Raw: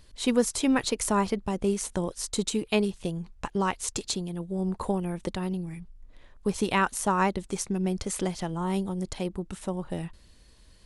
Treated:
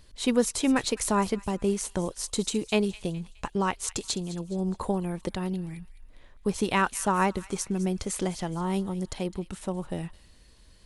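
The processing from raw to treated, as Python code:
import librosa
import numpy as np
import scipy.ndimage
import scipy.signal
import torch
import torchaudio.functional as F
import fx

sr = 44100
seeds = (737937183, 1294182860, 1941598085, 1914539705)

y = fx.echo_wet_highpass(x, sr, ms=209, feedback_pct=43, hz=1900.0, wet_db=-15.0)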